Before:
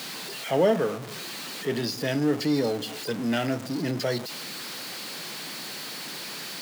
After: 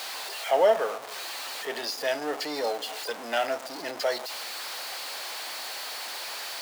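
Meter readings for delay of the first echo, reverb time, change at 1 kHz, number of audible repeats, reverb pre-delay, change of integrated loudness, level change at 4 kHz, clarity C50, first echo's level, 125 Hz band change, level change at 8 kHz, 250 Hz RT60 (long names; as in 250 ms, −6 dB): no echo audible, no reverb audible, +4.5 dB, no echo audible, no reverb audible, −1.0 dB, 0.0 dB, no reverb audible, no echo audible, below −25 dB, 0.0 dB, no reverb audible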